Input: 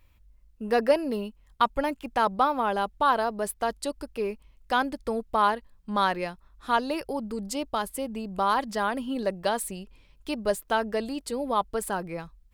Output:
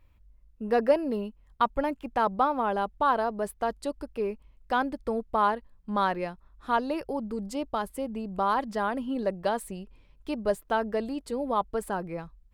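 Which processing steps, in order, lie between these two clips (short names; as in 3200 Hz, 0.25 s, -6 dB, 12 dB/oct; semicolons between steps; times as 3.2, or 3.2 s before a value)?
high shelf 2300 Hz -10 dB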